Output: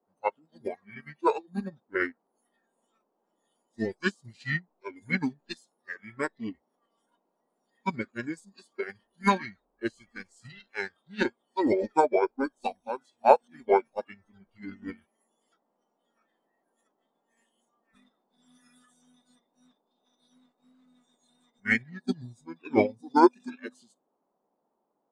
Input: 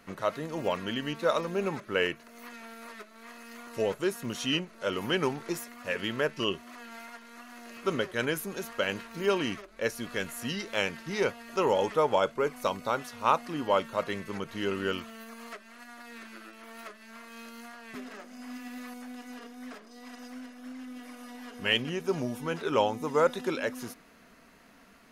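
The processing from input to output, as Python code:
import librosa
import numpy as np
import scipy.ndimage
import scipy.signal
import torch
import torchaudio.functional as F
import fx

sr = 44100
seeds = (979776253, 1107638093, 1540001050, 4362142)

y = fx.noise_reduce_blind(x, sr, reduce_db=22)
y = fx.formant_shift(y, sr, semitones=-6)
y = fx.dmg_noise_band(y, sr, seeds[0], low_hz=190.0, high_hz=930.0, level_db=-60.0)
y = fx.upward_expand(y, sr, threshold_db=-39.0, expansion=2.5)
y = y * 10.0 ** (9.0 / 20.0)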